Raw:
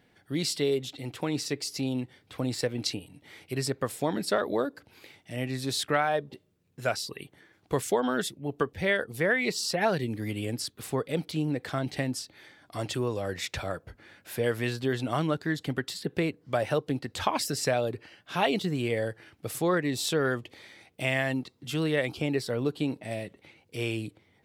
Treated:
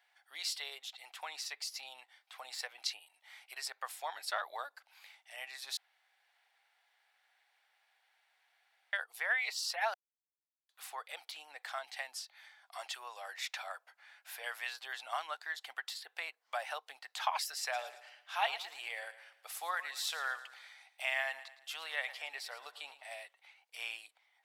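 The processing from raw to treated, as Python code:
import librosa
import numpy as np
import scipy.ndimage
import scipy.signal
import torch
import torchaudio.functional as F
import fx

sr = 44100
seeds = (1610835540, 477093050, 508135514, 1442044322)

y = fx.echo_feedback(x, sr, ms=112, feedback_pct=43, wet_db=-14.5, at=(17.72, 23.19), fade=0.02)
y = fx.edit(y, sr, fx.room_tone_fill(start_s=5.77, length_s=3.16),
    fx.silence(start_s=9.94, length_s=0.75), tone=tone)
y = scipy.signal.sosfilt(scipy.signal.cheby1(4, 1.0, 750.0, 'highpass', fs=sr, output='sos'), y)
y = fx.dynamic_eq(y, sr, hz=8200.0, q=2.3, threshold_db=-52.0, ratio=4.0, max_db=-4)
y = y * librosa.db_to_amplitude(-4.5)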